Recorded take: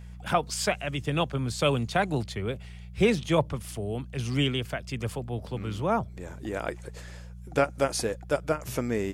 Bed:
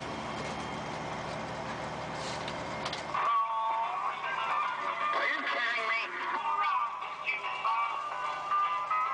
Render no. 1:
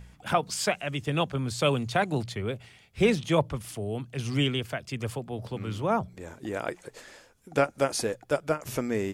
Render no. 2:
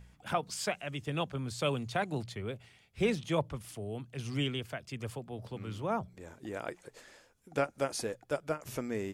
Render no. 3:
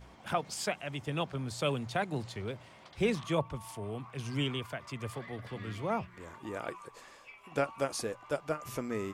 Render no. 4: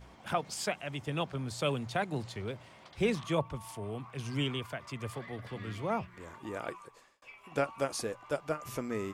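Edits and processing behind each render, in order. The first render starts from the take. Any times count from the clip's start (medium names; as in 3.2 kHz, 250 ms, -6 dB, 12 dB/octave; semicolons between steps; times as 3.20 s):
de-hum 60 Hz, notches 3
trim -7 dB
add bed -20 dB
6.71–7.22 s: fade out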